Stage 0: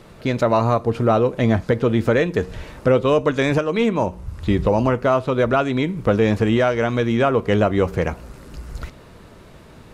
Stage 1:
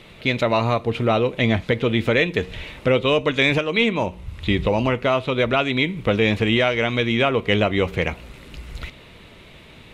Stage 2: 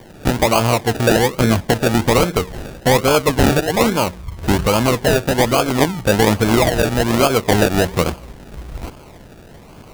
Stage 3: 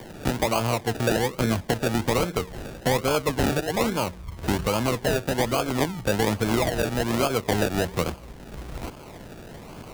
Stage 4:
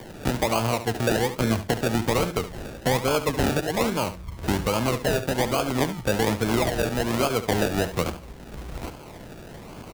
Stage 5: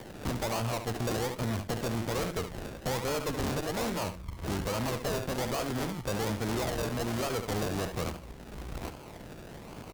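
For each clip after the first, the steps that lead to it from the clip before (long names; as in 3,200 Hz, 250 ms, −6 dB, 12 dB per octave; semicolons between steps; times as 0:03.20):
flat-topped bell 2,800 Hz +11.5 dB 1.2 octaves; level −2.5 dB
sample-and-hold swept by an LFO 33×, swing 60% 1.2 Hz; level +4.5 dB
multiband upward and downward compressor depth 40%; level −9 dB
single-tap delay 71 ms −12 dB
tube saturation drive 28 dB, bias 0.75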